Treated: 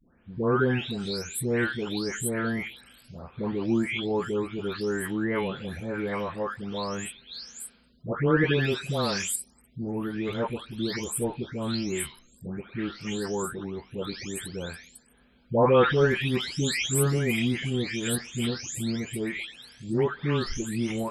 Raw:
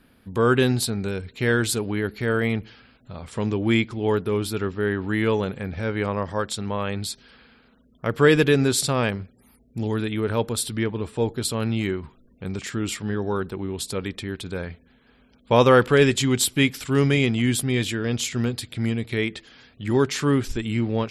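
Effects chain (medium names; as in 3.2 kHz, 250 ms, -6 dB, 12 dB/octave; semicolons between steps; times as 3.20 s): delay that grows with frequency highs late, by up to 552 ms; trim -3 dB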